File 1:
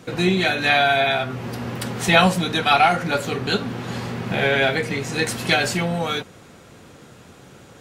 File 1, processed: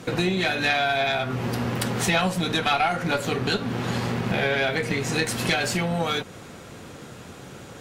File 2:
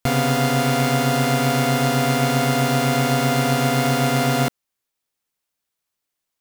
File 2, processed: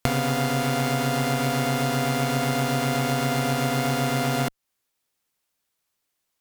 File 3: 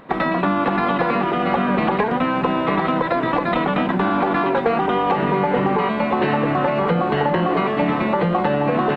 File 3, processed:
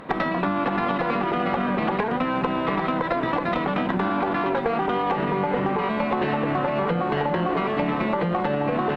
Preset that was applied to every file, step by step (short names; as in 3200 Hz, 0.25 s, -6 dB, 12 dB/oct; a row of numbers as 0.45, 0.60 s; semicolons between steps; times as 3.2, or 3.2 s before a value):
compressor 3:1, threshold -27 dBFS; tube stage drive 13 dB, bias 0.75; match loudness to -24 LUFS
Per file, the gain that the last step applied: +8.5, +7.5, +8.0 dB